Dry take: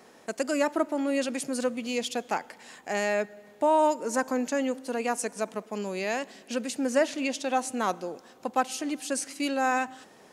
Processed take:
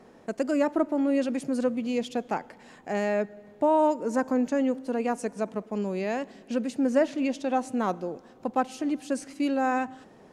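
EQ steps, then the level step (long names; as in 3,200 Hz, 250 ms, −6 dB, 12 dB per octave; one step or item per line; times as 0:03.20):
spectral tilt −3 dB per octave
−1.5 dB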